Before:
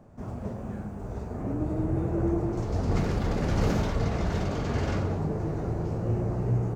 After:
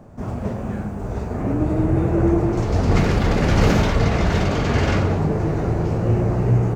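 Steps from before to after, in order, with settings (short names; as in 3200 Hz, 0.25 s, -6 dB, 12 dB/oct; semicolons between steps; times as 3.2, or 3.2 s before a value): dynamic EQ 2400 Hz, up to +5 dB, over -53 dBFS, Q 0.89; gain +9 dB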